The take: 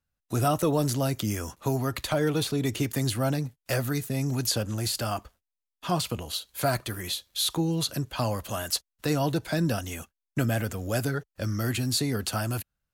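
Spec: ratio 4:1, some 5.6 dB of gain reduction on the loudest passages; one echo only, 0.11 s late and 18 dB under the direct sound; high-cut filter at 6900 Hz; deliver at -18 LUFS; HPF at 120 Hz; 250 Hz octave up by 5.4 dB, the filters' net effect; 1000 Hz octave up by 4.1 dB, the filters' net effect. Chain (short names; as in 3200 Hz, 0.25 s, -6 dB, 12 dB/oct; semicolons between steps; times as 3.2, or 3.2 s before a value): HPF 120 Hz; LPF 6900 Hz; bell 250 Hz +7 dB; bell 1000 Hz +5.5 dB; compressor 4:1, threshold -24 dBFS; echo 0.11 s -18 dB; gain +12 dB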